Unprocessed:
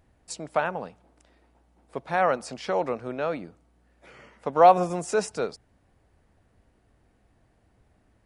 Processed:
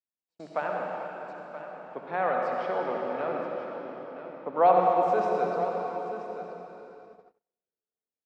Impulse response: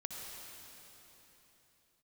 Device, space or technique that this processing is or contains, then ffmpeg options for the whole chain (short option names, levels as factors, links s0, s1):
swimming-pool hall: -filter_complex "[0:a]asettb=1/sr,asplit=3[s0][s1][s2];[s0]atrim=end=3.294[s3];[s1]atrim=start=3.29:end=4.5,asetpts=PTS-STARTPTS,afade=t=in:d=0.004:c=qsin,afade=t=out:st=1.206:d=0.004:c=qsin,lowpass=1500[s4];[s2]atrim=start=4.496[s5];[s3][s4]acrossfade=d=0.004:c1=hsin:c2=qsin[s6];[s6][s5]acrossfade=d=0.004:c1=qsin:c2=hsin,acrossover=split=170 4400:gain=0.0891 1 0.0631[s7][s8][s9];[s7][s8][s9]amix=inputs=3:normalize=0[s10];[1:a]atrim=start_sample=2205[s11];[s10][s11]afir=irnorm=-1:irlink=0,highshelf=f=3500:g=-8,aecho=1:1:978:0.251,agate=range=0.0158:threshold=0.00355:ratio=16:detection=peak,volume=0.891"